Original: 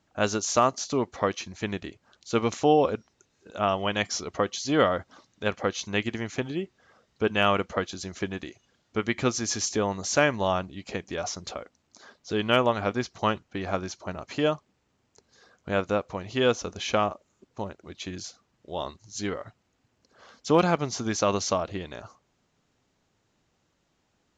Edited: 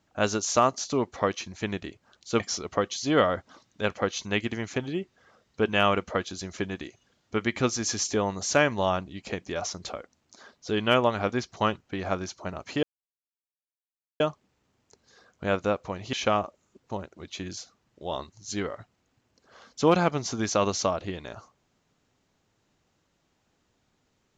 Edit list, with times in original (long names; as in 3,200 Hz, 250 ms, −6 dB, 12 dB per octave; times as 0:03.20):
0:02.40–0:04.02: remove
0:14.45: splice in silence 1.37 s
0:16.38–0:16.80: remove